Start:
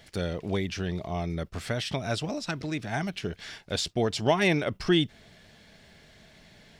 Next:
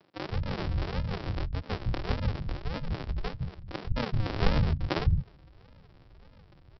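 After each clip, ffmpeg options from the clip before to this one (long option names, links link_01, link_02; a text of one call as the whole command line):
ffmpeg -i in.wav -filter_complex "[0:a]aresample=11025,acrusher=samples=41:mix=1:aa=0.000001:lfo=1:lforange=24.6:lforate=1.7,aresample=44100,acrossover=split=180[link_01][link_02];[link_01]adelay=160[link_03];[link_03][link_02]amix=inputs=2:normalize=0,volume=1dB" out.wav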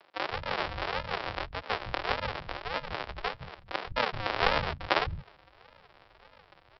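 ffmpeg -i in.wav -filter_complex "[0:a]acrossover=split=520 4400:gain=0.0891 1 0.251[link_01][link_02][link_03];[link_01][link_02][link_03]amix=inputs=3:normalize=0,volume=8.5dB" out.wav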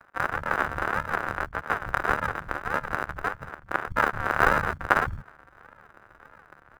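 ffmpeg -i in.wav -filter_complex "[0:a]lowpass=frequency=1500:width_type=q:width=3.8,tremolo=f=74:d=0.71,asplit=2[link_01][link_02];[link_02]acrusher=samples=40:mix=1:aa=0.000001,volume=-11.5dB[link_03];[link_01][link_03]amix=inputs=2:normalize=0,volume=3.5dB" out.wav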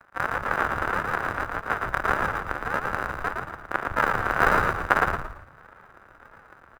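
ffmpeg -i in.wav -filter_complex "[0:a]asplit=5[link_01][link_02][link_03][link_04][link_05];[link_02]adelay=113,afreqshift=-54,volume=-4dB[link_06];[link_03]adelay=226,afreqshift=-108,volume=-13.6dB[link_07];[link_04]adelay=339,afreqshift=-162,volume=-23.3dB[link_08];[link_05]adelay=452,afreqshift=-216,volume=-32.9dB[link_09];[link_01][link_06][link_07][link_08][link_09]amix=inputs=5:normalize=0" out.wav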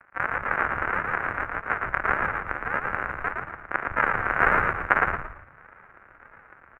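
ffmpeg -i in.wav -af "highshelf=frequency=3100:width_type=q:width=3:gain=-12,volume=-3dB" out.wav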